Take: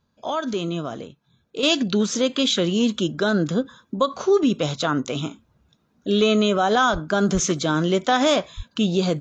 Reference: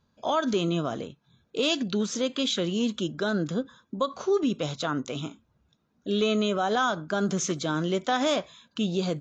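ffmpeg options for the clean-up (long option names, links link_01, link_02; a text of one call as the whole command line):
ffmpeg -i in.wav -filter_complex "[0:a]asplit=3[link_01][link_02][link_03];[link_01]afade=type=out:start_time=6.92:duration=0.02[link_04];[link_02]highpass=frequency=140:width=0.5412,highpass=frequency=140:width=1.3066,afade=type=in:start_time=6.92:duration=0.02,afade=type=out:start_time=7.04:duration=0.02[link_05];[link_03]afade=type=in:start_time=7.04:duration=0.02[link_06];[link_04][link_05][link_06]amix=inputs=3:normalize=0,asplit=3[link_07][link_08][link_09];[link_07]afade=type=out:start_time=7.33:duration=0.02[link_10];[link_08]highpass=frequency=140:width=0.5412,highpass=frequency=140:width=1.3066,afade=type=in:start_time=7.33:duration=0.02,afade=type=out:start_time=7.45:duration=0.02[link_11];[link_09]afade=type=in:start_time=7.45:duration=0.02[link_12];[link_10][link_11][link_12]amix=inputs=3:normalize=0,asplit=3[link_13][link_14][link_15];[link_13]afade=type=out:start_time=8.56:duration=0.02[link_16];[link_14]highpass=frequency=140:width=0.5412,highpass=frequency=140:width=1.3066,afade=type=in:start_time=8.56:duration=0.02,afade=type=out:start_time=8.68:duration=0.02[link_17];[link_15]afade=type=in:start_time=8.68:duration=0.02[link_18];[link_16][link_17][link_18]amix=inputs=3:normalize=0,asetnsamples=nb_out_samples=441:pad=0,asendcmd='1.63 volume volume -6.5dB',volume=0dB" out.wav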